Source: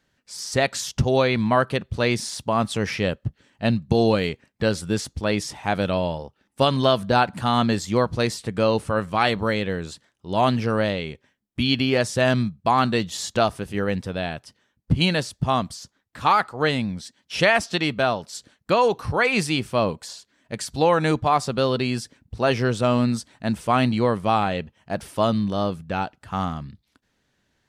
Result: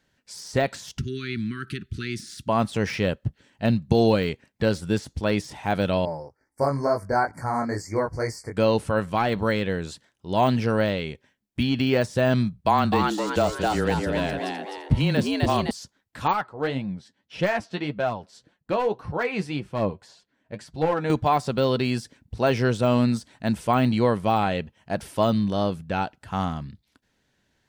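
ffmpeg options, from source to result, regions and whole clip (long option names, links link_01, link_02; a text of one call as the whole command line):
ffmpeg -i in.wav -filter_complex "[0:a]asettb=1/sr,asplit=3[link_01][link_02][link_03];[link_01]atrim=end=0.984[link_04];[link_02]atrim=start=0.98:end=2.49,asetpts=PTS-STARTPTS,afade=type=in:duration=0.004:curve=qsin,afade=type=out:start_time=1.506:duration=0.004:curve=qsin,acompressor=threshold=-26dB:ratio=3:attack=3.2:release=140:knee=1:detection=peak,asuperstop=centerf=700:order=12:qfactor=0.81[link_05];[link_03]atrim=start=2.486[link_06];[link_04][link_05]acrossfade=duration=0.004:curve1=hsin:curve2=qsin[link_07];[link_07][link_06]acrossfade=duration=0.004:curve1=qsin:curve2=hsin,asettb=1/sr,asplit=3[link_08][link_09][link_10];[link_08]atrim=end=6.054[link_11];[link_09]atrim=start=6.05:end=8.57,asetpts=PTS-STARTPTS,afade=type=in:duration=0.004:curve=qsin,afade=type=out:start_time=2.516:duration=0.004:curve=qsin,flanger=delay=18:depth=3.6:speed=2.2,asuperstop=centerf=3200:order=20:qfactor=1.5,equalizer=frequency=200:width=3.6:gain=-14.5[link_12];[link_10]atrim=start=8.566[link_13];[link_11][link_12]acrossfade=duration=0.004:curve1=hsin:curve2=qsin[link_14];[link_14][link_13]acrossfade=duration=0.004:curve1=qsin:curve2=hsin,asettb=1/sr,asplit=3[link_15][link_16][link_17];[link_15]atrim=end=12.534[link_18];[link_16]atrim=start=12.53:end=15.71,asetpts=PTS-STARTPTS,afade=type=in:duration=0.004:curve=qsin,afade=type=out:start_time=3.176:duration=0.004:curve=qsin,afreqshift=-19,asplit=7[link_19][link_20][link_21][link_22][link_23][link_24][link_25];[link_20]adelay=256,afreqshift=110,volume=-4dB[link_26];[link_21]adelay=512,afreqshift=220,volume=-10.7dB[link_27];[link_22]adelay=768,afreqshift=330,volume=-17.5dB[link_28];[link_23]adelay=1024,afreqshift=440,volume=-24.2dB[link_29];[link_24]adelay=1280,afreqshift=550,volume=-31dB[link_30];[link_25]adelay=1536,afreqshift=660,volume=-37.7dB[link_31];[link_19][link_26][link_27][link_28][link_29][link_30][link_31]amix=inputs=7:normalize=0,atrim=end_sample=140238[link_32];[link_17]atrim=start=15.706[link_33];[link_18][link_32]acrossfade=duration=0.004:curve1=hsin:curve2=qsin[link_34];[link_34][link_33]acrossfade=duration=0.004:curve1=qsin:curve2=hsin,asettb=1/sr,asplit=3[link_35][link_36][link_37];[link_35]atrim=end=16.334[link_38];[link_36]atrim=start=16.33:end=21.1,asetpts=PTS-STARTPTS,afade=type=in:duration=0.004:curve=qsin,afade=type=out:start_time=4.766:duration=0.004:curve=qsin,lowpass=frequency=1500:poles=1,aeval=exprs='clip(val(0),-1,0.168)':channel_layout=same,flanger=delay=5.5:depth=5.3:regen=39:speed=1.8:shape=sinusoidal[link_39];[link_37]atrim=start=21.096[link_40];[link_38][link_39]acrossfade=duration=0.004:curve1=hsin:curve2=qsin[link_41];[link_41][link_40]acrossfade=duration=0.004:curve1=qsin:curve2=hsin,deesser=0.8,bandreject=frequency=1200:width=13" out.wav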